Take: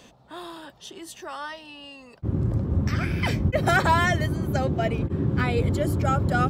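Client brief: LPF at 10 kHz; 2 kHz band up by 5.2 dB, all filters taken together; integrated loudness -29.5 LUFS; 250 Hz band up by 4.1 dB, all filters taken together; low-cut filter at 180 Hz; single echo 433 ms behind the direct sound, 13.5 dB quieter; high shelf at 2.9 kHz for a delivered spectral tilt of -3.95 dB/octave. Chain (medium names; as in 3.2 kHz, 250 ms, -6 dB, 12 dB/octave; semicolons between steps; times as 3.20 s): high-pass 180 Hz; low-pass 10 kHz; peaking EQ 250 Hz +7.5 dB; peaking EQ 2 kHz +4.5 dB; treble shelf 2.9 kHz +6.5 dB; delay 433 ms -13.5 dB; trim -7 dB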